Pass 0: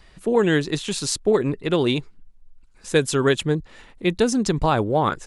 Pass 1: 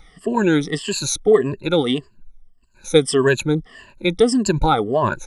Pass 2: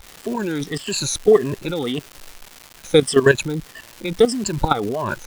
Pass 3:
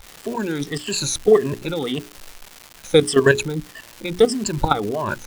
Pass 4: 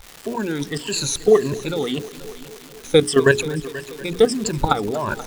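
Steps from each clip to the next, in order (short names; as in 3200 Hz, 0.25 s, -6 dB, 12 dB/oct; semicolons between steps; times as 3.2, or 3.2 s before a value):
moving spectral ripple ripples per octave 1.4, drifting -1.7 Hz, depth 21 dB; gain -2 dB
level quantiser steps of 14 dB; crackle 410/s -32 dBFS; gain +4.5 dB
notches 60/120/180/240/300/360/420 Hz
multi-head echo 0.241 s, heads first and second, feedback 56%, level -20 dB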